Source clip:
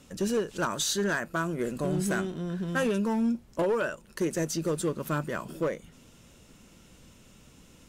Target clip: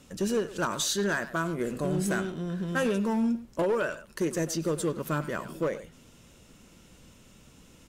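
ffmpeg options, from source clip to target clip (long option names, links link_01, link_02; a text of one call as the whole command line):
ffmpeg -i in.wav -filter_complex "[0:a]asplit=2[link_01][link_02];[link_02]adelay=100,highpass=300,lowpass=3400,asoftclip=type=hard:threshold=-28.5dB,volume=-11dB[link_03];[link_01][link_03]amix=inputs=2:normalize=0" out.wav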